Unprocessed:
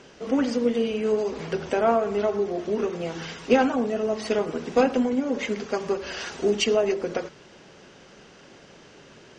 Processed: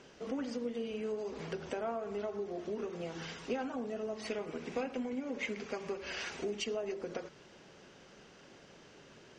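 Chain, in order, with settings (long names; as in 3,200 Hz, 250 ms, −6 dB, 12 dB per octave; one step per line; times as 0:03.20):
downward compressor 2.5 to 1, threshold −30 dBFS, peak gain reduction 11.5 dB
0:04.23–0:06.60: parametric band 2,300 Hz +7 dB 0.48 octaves
level −7.5 dB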